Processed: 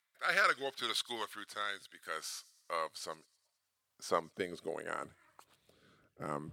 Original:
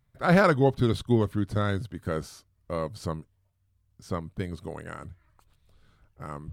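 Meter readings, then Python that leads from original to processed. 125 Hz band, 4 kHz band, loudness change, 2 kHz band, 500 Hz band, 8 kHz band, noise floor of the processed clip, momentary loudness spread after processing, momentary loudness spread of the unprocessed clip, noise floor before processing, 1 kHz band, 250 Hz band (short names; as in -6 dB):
-27.0 dB, +2.5 dB, -10.0 dB, -2.5 dB, -12.5 dB, +2.5 dB, -84 dBFS, 16 LU, 19 LU, -70 dBFS, -6.0 dB, -20.5 dB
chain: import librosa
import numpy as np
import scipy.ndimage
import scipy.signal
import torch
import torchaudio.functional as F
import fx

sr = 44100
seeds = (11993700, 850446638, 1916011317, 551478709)

y = fx.rotary(x, sr, hz=0.7)
y = fx.filter_sweep_highpass(y, sr, from_hz=1500.0, to_hz=250.0, start_s=2.23, end_s=5.91, q=0.77)
y = fx.echo_wet_highpass(y, sr, ms=105, feedback_pct=59, hz=4300.0, wet_db=-19.5)
y = y * 10.0 ** (5.0 / 20.0)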